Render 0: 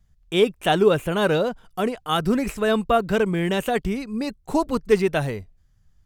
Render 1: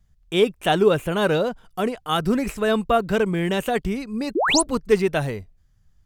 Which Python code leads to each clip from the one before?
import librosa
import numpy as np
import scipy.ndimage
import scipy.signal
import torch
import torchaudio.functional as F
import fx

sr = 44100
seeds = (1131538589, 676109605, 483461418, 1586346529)

y = fx.spec_paint(x, sr, seeds[0], shape='rise', start_s=4.35, length_s=0.27, low_hz=270.0, high_hz=11000.0, level_db=-20.0)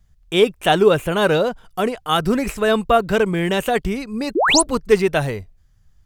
y = fx.peak_eq(x, sr, hz=220.0, db=-3.0, octaves=1.4)
y = y * librosa.db_to_amplitude(4.5)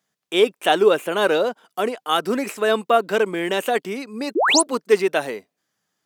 y = scipy.signal.sosfilt(scipy.signal.butter(4, 250.0, 'highpass', fs=sr, output='sos'), x)
y = y * librosa.db_to_amplitude(-1.5)